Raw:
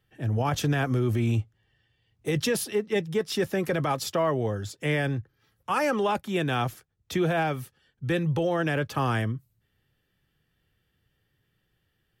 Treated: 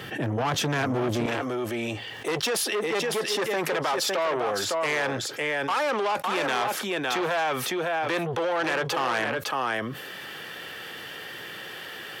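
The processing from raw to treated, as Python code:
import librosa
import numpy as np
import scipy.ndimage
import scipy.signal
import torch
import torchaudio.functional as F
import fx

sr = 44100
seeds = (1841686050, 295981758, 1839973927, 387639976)

y = fx.high_shelf(x, sr, hz=6700.0, db=-9.0)
y = y + 10.0 ** (-8.5 / 20.0) * np.pad(y, (int(557 * sr / 1000.0), 0))[:len(y)]
y = 10.0 ** (-27.5 / 20.0) * np.tanh(y / 10.0 ** (-27.5 / 20.0))
y = fx.highpass(y, sr, hz=fx.steps((0.0, 210.0), (1.26, 480.0)), slope=12)
y = fx.env_flatten(y, sr, amount_pct=70)
y = y * 10.0 ** (6.0 / 20.0)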